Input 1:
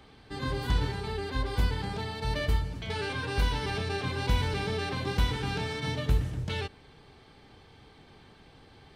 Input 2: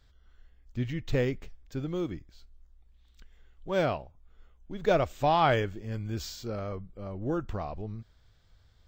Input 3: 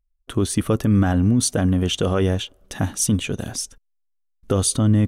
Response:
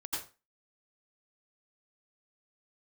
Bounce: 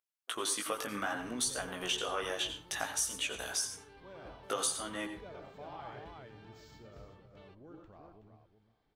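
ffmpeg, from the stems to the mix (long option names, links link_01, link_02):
-filter_complex "[0:a]aemphasis=mode=reproduction:type=75kf,adelay=500,volume=-19.5dB,asplit=3[link_01][link_02][link_03];[link_02]volume=-13dB[link_04];[link_03]volume=-4dB[link_05];[1:a]highshelf=frequency=4400:gain=-7.5,adelay=350,volume=-17.5dB,asplit=3[link_06][link_07][link_08];[link_07]volume=-8dB[link_09];[link_08]volume=-11dB[link_10];[2:a]highpass=850,acompressor=threshold=-29dB:ratio=10,flanger=delay=15.5:depth=4.5:speed=0.61,volume=0.5dB,asplit=3[link_11][link_12][link_13];[link_12]volume=-8.5dB[link_14];[link_13]apad=whole_len=417104[link_15];[link_01][link_15]sidechaingate=range=-33dB:threshold=-58dB:ratio=16:detection=peak[link_16];[link_16][link_06]amix=inputs=2:normalize=0,acompressor=threshold=-54dB:ratio=6,volume=0dB[link_17];[3:a]atrim=start_sample=2205[link_18];[link_04][link_09][link_14]amix=inputs=3:normalize=0[link_19];[link_19][link_18]afir=irnorm=-1:irlink=0[link_20];[link_05][link_10]amix=inputs=2:normalize=0,aecho=0:1:373|746|1119:1|0.15|0.0225[link_21];[link_11][link_17][link_20][link_21]amix=inputs=4:normalize=0,lowshelf=frequency=110:gain=-10"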